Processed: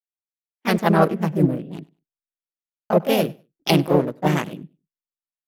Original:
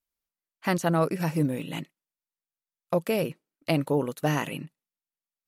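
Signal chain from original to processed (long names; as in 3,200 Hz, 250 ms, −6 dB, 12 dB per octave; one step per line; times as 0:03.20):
adaptive Wiener filter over 41 samples
pitch-shifted copies added +3 semitones −4 dB, +4 semitones −6 dB
automatic gain control gain up to 13 dB
repeating echo 99 ms, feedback 26%, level −22 dB
multiband upward and downward expander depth 70%
level −3.5 dB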